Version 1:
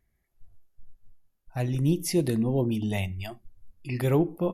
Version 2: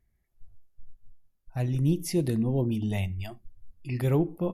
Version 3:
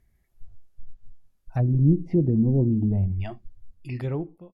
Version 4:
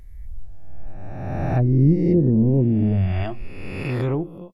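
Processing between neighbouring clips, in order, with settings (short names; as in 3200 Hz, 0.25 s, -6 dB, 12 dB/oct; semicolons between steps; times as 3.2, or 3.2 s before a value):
low shelf 200 Hz +6.5 dB; gain -4 dB
ending faded out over 1.39 s; treble ducked by the level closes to 360 Hz, closed at -24.5 dBFS; gain +6.5 dB
spectral swells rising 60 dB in 1.48 s; in parallel at 0 dB: compressor, threshold -28 dBFS, peak gain reduction 14 dB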